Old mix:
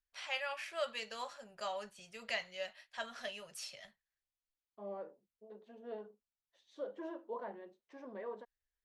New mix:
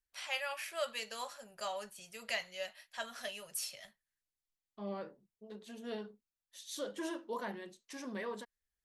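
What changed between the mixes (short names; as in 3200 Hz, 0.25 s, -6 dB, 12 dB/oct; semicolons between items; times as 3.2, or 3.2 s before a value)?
second voice: remove band-pass 610 Hz, Q 1.2; master: remove air absorption 75 m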